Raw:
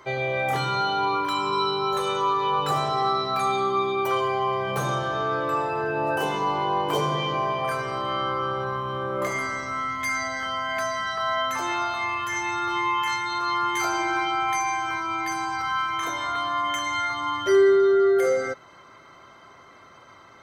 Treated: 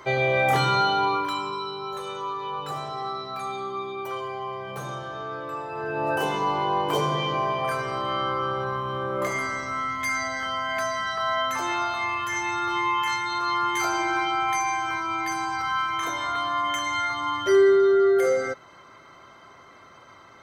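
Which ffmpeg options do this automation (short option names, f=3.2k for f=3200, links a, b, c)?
-af "volume=12dB,afade=t=out:st=0.69:d=0.91:silence=0.251189,afade=t=in:st=5.67:d=0.45:silence=0.398107"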